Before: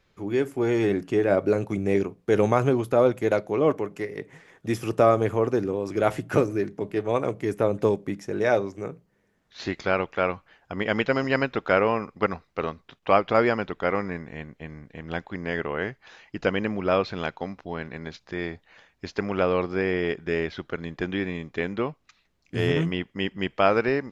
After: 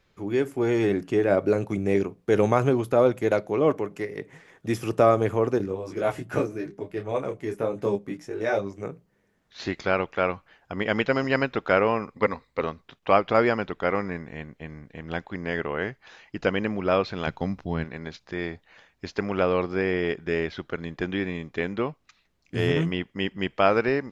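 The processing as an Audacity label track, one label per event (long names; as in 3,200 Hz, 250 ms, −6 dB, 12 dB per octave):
5.580000	8.830000	micro pitch shift up and down each way 11 cents
12.140000	12.610000	EQ curve with evenly spaced ripples crests per octave 1, crest to trough 9 dB
17.270000	17.840000	bass and treble bass +11 dB, treble +4 dB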